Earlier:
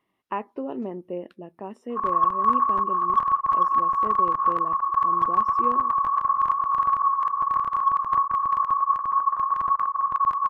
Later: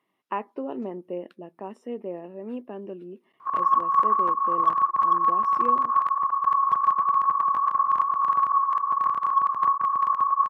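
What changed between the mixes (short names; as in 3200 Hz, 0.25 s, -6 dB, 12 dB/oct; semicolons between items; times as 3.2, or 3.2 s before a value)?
background: entry +1.50 s; master: add Bessel high-pass 180 Hz, order 2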